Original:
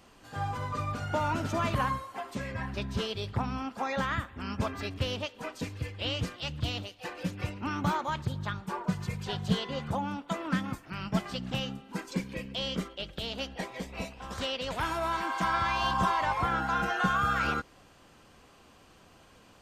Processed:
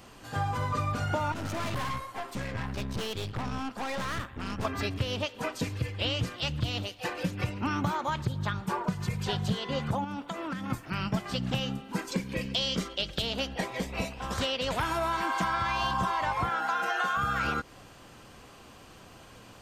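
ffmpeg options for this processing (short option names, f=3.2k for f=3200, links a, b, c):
-filter_complex "[0:a]asettb=1/sr,asplit=3[a][b][c];[a]atrim=end=1.324[d];[b]atrim=start=1.32:end=4.65,asetpts=PTS-STARTPTS,afade=t=in:d=0.004:c=qsin,afade=t=out:st=3.326:d=0.004:c=qsin,aeval=exprs='(tanh(70.8*val(0)+0.7)-tanh(0.7))/70.8':c=same[e];[c]atrim=start=4.646[f];[d][e]acrossfade=d=0.004:c1=hsin:c2=qsin[g];[g][f]acrossfade=d=0.004:c1=qsin:c2=hsin,asettb=1/sr,asplit=3[h][i][j];[h]atrim=end=10.044[k];[i]atrim=start=10.04:end=10.7,asetpts=PTS-STARTPTS,afade=t=in:d=0.004:c=qsin,afade=t=out:st=0.656:d=0.004:c=qsin,acompressor=threshold=-37dB:ratio=12:attack=3.2:release=140:knee=1:detection=peak[l];[j]atrim=start=10.696[m];[k][l]acrossfade=d=0.004:c1=hsin:c2=qsin[n];[n][m]acrossfade=d=0.004:c1=qsin:c2=hsin,asettb=1/sr,asplit=3[o][p][q];[o]atrim=end=12.414[r];[p]atrim=start=12.41:end=13.22,asetpts=PTS-STARTPTS,afade=t=in:d=0.004:c=qsin,afade=t=out:st=0.806:d=0.004:c=qsin,equalizer=f=5.3k:t=o:w=1.4:g=8[s];[q]atrim=start=13.216[t];[r][s]acrossfade=d=0.004:c1=hsin:c2=qsin[u];[u][t]acrossfade=d=0.004:c1=qsin:c2=hsin,asettb=1/sr,asplit=3[v][w][x];[v]atrim=end=16.494[y];[w]atrim=start=16.49:end=17.17,asetpts=PTS-STARTPTS,afade=t=in:d=0.004:c=qsin,afade=t=out:st=0.676:d=0.004:c=qsin,highpass=450[z];[x]atrim=start=17.166[aa];[y][z]acrossfade=d=0.004:c1=hsin:c2=qsin[ab];[ab][aa]acrossfade=d=0.004:c1=qsin:c2=hsin,equalizer=f=120:w=7.6:g=6,acompressor=threshold=-32dB:ratio=6,highshelf=f=11k:g=3.5,volume=6dB"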